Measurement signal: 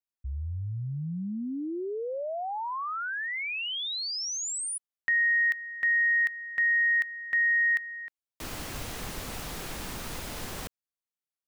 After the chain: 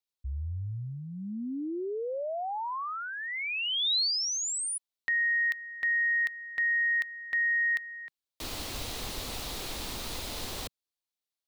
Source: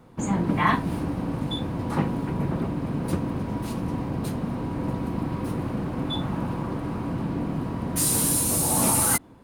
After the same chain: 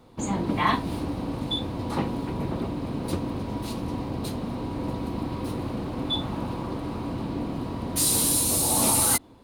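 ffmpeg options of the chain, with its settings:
ffmpeg -i in.wav -af "equalizer=frequency=160:width_type=o:width=0.67:gain=-7,equalizer=frequency=1600:width_type=o:width=0.67:gain=-5,equalizer=frequency=4000:width_type=o:width=0.67:gain=7" out.wav

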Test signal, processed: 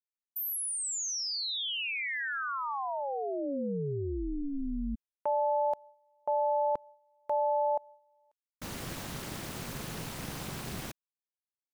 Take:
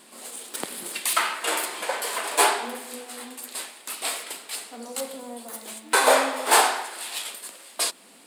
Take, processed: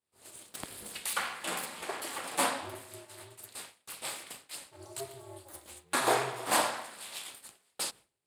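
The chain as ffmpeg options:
ffmpeg -i in.wav -af "aeval=exprs='val(0)*sin(2*PI*140*n/s)':channel_layout=same,agate=range=-33dB:threshold=-38dB:ratio=3:detection=peak,equalizer=frequency=200:width=0.9:gain=2.5,volume=-7dB" out.wav

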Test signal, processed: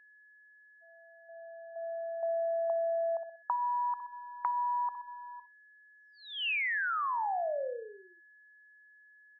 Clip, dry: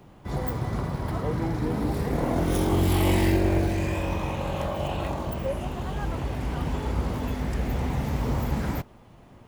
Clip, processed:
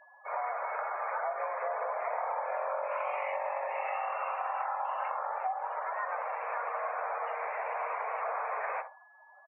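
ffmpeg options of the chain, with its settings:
ffmpeg -i in.wav -af "aecho=1:1:63|126|189|252:0.282|0.093|0.0307|0.0101,highpass=frequency=400:width_type=q:width=0.5412,highpass=frequency=400:width_type=q:width=1.307,lowpass=frequency=2300:width_type=q:width=0.5176,lowpass=frequency=2300:width_type=q:width=0.7071,lowpass=frequency=2300:width_type=q:width=1.932,afreqshift=220,acompressor=threshold=-33dB:ratio=20,afftdn=noise_reduction=31:noise_floor=-47,aeval=exprs='val(0)+0.000891*sin(2*PI*1700*n/s)':channel_layout=same,volume=3.5dB" out.wav

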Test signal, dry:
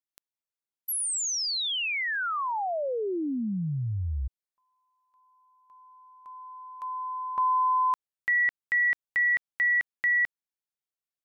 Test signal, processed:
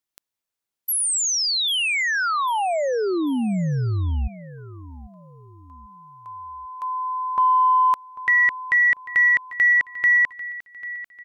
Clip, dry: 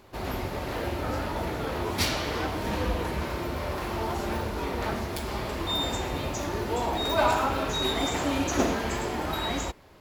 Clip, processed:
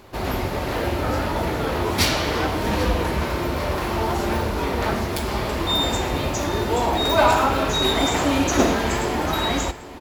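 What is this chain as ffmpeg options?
ffmpeg -i in.wav -af "aecho=1:1:794|1588|2382:0.141|0.0579|0.0237,acontrast=86" out.wav

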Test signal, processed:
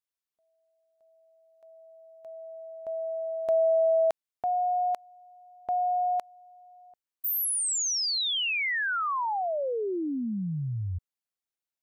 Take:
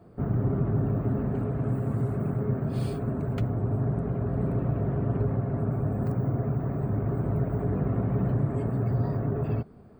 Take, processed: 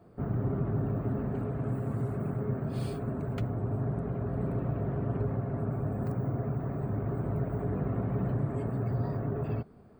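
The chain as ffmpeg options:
ffmpeg -i in.wav -af "lowshelf=frequency=400:gain=-3,volume=-2dB" out.wav

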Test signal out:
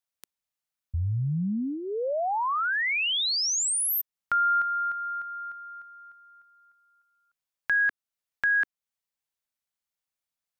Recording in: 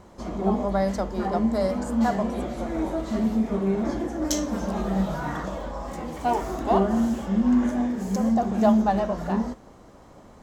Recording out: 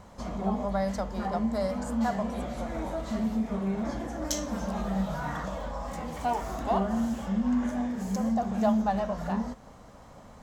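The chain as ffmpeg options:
ffmpeg -i in.wav -filter_complex "[0:a]equalizer=frequency=350:width_type=o:width=0.5:gain=-11.5,asplit=2[link_01][link_02];[link_02]acompressor=threshold=-34dB:ratio=6,volume=1dB[link_03];[link_01][link_03]amix=inputs=2:normalize=0,volume=-6dB" out.wav

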